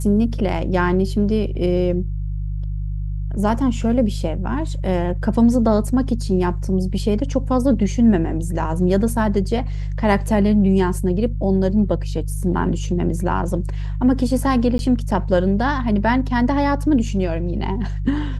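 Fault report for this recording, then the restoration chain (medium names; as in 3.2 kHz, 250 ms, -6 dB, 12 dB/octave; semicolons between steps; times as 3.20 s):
hum 50 Hz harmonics 3 -24 dBFS
14.78–14.79 s: dropout 11 ms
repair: de-hum 50 Hz, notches 3; interpolate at 14.78 s, 11 ms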